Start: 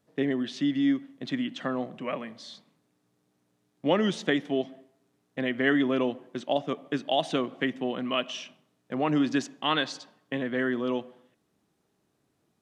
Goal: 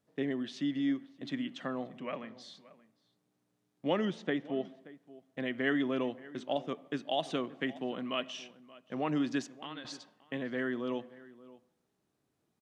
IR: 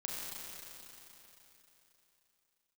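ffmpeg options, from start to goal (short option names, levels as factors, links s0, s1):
-filter_complex "[0:a]asettb=1/sr,asplit=3[s0][s1][s2];[s0]atrim=end=2.004[s3];[s1]atrim=start=2:end=2.41,asetpts=PTS-STARTPTS,afade=t=in:d=0.004:c=qsin,afade=t=out:st=0.406:d=0.004:c=qsin,lowpass=f=6800:w=0.5412,lowpass=f=6800:w=1.3066[s4];[s2]atrim=start=2.406[s5];[s3][s4]acrossfade=d=0.004:c1=hsin:c2=qsin[s6];[s6][s5]acrossfade=d=0.004:c1=qsin:c2=hsin,asettb=1/sr,asplit=3[s7][s8][s9];[s7]atrim=end=4.054[s10];[s8]atrim=start=4.05:end=4.65,asetpts=PTS-STARTPTS,afade=t=in:d=0.004:c=qsin,afade=t=out:st=0.596:d=0.004:c=qsin,aemphasis=mode=reproduction:type=75kf[s11];[s9]atrim=start=4.646[s12];[s10][s11]acrossfade=d=0.004:c1=hsin:c2=qsin[s13];[s13][s12]acrossfade=d=0.004:c1=qsin:c2=hsin,asettb=1/sr,asplit=3[s14][s15][s16];[s14]atrim=end=9.444[s17];[s15]atrim=start=9.44:end=9.85,asetpts=PTS-STARTPTS,afade=t=in:d=0.004:c=qsin,afade=t=out:st=0.406:d=0.004:c=qsin,acompressor=threshold=0.0158:ratio=6[s18];[s16]atrim=start=9.846[s19];[s17][s18]acrossfade=d=0.004:c1=hsin:c2=qsin[s20];[s20][s19]acrossfade=d=0.004:c1=qsin:c2=hsin,asplit=2[s21][s22];[s22]adelay=577.3,volume=0.112,highshelf=f=4000:g=-13[s23];[s21][s23]amix=inputs=2:normalize=0,volume=0.473"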